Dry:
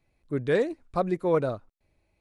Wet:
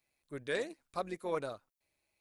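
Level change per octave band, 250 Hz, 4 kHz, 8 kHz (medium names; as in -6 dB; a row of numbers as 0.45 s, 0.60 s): -14.5 dB, -1.5 dB, no reading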